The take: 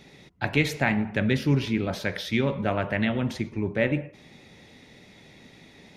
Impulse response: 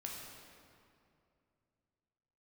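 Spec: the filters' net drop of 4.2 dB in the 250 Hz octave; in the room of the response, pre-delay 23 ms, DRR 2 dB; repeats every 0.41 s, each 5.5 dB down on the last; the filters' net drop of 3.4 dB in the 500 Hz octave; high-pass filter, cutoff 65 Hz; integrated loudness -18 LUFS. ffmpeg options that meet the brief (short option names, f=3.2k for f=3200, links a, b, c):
-filter_complex "[0:a]highpass=65,equalizer=f=250:t=o:g=-4.5,equalizer=f=500:t=o:g=-3,aecho=1:1:410|820|1230|1640|2050|2460|2870:0.531|0.281|0.149|0.079|0.0419|0.0222|0.0118,asplit=2[a][b];[1:a]atrim=start_sample=2205,adelay=23[c];[b][c]afir=irnorm=-1:irlink=0,volume=-1dB[d];[a][d]amix=inputs=2:normalize=0,volume=7.5dB"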